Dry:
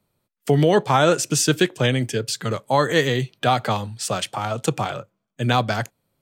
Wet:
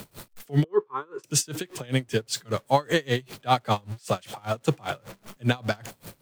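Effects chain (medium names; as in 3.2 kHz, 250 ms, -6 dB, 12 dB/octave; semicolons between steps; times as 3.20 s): jump at every zero crossing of -33 dBFS; 0.64–1.24 s: two resonant band-passes 660 Hz, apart 1.4 oct; logarithmic tremolo 5.1 Hz, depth 29 dB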